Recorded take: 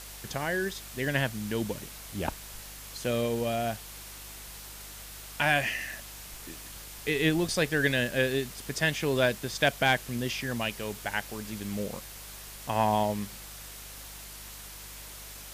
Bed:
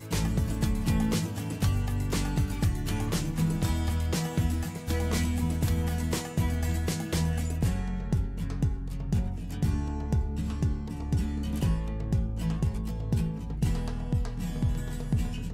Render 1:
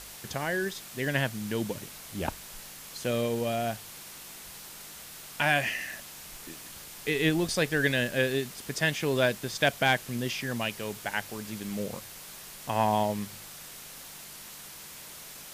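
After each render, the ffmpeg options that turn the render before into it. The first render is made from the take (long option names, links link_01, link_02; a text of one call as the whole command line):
ffmpeg -i in.wav -af "bandreject=frequency=50:width_type=h:width=4,bandreject=frequency=100:width_type=h:width=4" out.wav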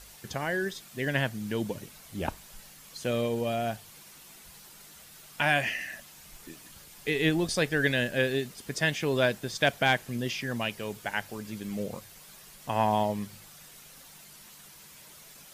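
ffmpeg -i in.wav -af "afftdn=noise_reduction=8:noise_floor=-46" out.wav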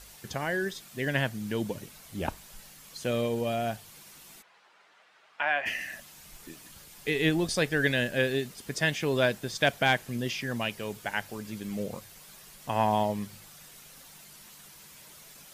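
ffmpeg -i in.wav -filter_complex "[0:a]asplit=3[link_01][link_02][link_03];[link_01]afade=type=out:start_time=4.41:duration=0.02[link_04];[link_02]highpass=620,lowpass=2100,afade=type=in:start_time=4.41:duration=0.02,afade=type=out:start_time=5.65:duration=0.02[link_05];[link_03]afade=type=in:start_time=5.65:duration=0.02[link_06];[link_04][link_05][link_06]amix=inputs=3:normalize=0" out.wav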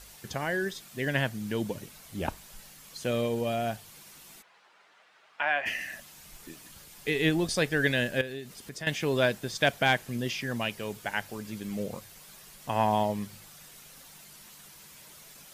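ffmpeg -i in.wav -filter_complex "[0:a]asettb=1/sr,asplit=3[link_01][link_02][link_03];[link_01]atrim=end=8.214[link_04];[link_02]atrim=start=8.21:end=8.87,asetpts=PTS-STARTPTS,afade=type=in:duration=0.004:curve=qsin,afade=type=out:start_time=0.656:duration=0.004:curve=qsin,acompressor=threshold=-42dB:ratio=2:attack=3.2:release=140:knee=1:detection=peak[link_05];[link_03]atrim=start=8.866[link_06];[link_04][link_05]acrossfade=duration=0.004:curve1=hsin:curve2=qsin[link_07];[link_07][link_06]acrossfade=duration=0.004:curve1=qsin:curve2=hsin" out.wav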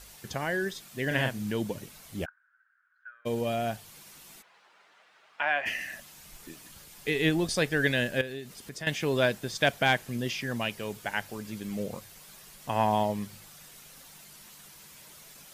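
ffmpeg -i in.wav -filter_complex "[0:a]asettb=1/sr,asplit=3[link_01][link_02][link_03];[link_01]atrim=end=1.074[link_04];[link_02]atrim=start=1.07:end=1.51,asetpts=PTS-STARTPTS,afade=type=in:duration=0.004:curve=qsin,afade=type=out:start_time=0.436:duration=0.004:curve=qsin,asplit=2[link_05][link_06];[link_06]adelay=39,volume=-5dB[link_07];[link_05][link_07]amix=inputs=2:normalize=0,atrim=end_sample=19404[link_08];[link_03]atrim=start=1.506[link_09];[link_04][link_08]acrossfade=duration=0.004:curve1=hsin:curve2=qsin[link_10];[link_10][link_09]acrossfade=duration=0.004:curve1=qsin:curve2=hsin,asplit=3[link_11][link_12][link_13];[link_11]afade=type=out:start_time=2.24:duration=0.02[link_14];[link_12]asuperpass=centerf=1500:order=4:qfactor=6.7,afade=type=in:start_time=2.24:duration=0.02,afade=type=out:start_time=3.25:duration=0.02[link_15];[link_13]afade=type=in:start_time=3.25:duration=0.02[link_16];[link_14][link_15][link_16]amix=inputs=3:normalize=0" out.wav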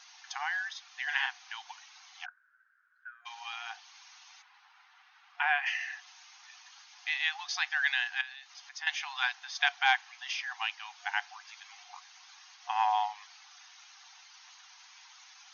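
ffmpeg -i in.wav -af "afftfilt=real='re*between(b*sr/4096,720,6700)':imag='im*between(b*sr/4096,720,6700)':win_size=4096:overlap=0.75,adynamicequalizer=threshold=0.00398:dfrequency=5200:dqfactor=0.7:tfrequency=5200:tqfactor=0.7:attack=5:release=100:ratio=0.375:range=2.5:mode=cutabove:tftype=highshelf" out.wav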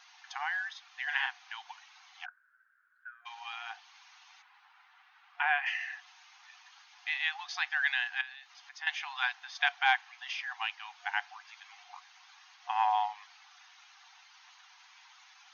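ffmpeg -i in.wav -af "equalizer=frequency=6000:width=1.1:gain=-8" out.wav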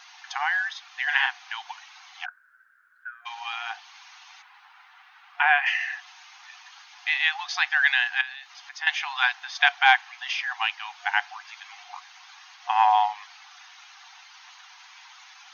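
ffmpeg -i in.wav -af "volume=9dB" out.wav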